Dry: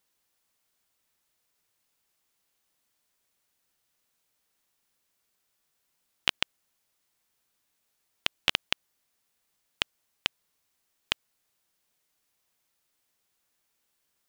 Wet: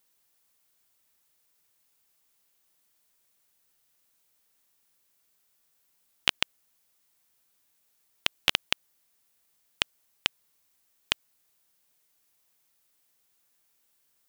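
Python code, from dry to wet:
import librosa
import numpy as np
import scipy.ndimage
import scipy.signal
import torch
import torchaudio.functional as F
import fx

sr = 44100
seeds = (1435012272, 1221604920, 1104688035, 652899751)

y = fx.high_shelf(x, sr, hz=8900.0, db=7.5)
y = y * librosa.db_to_amplitude(1.0)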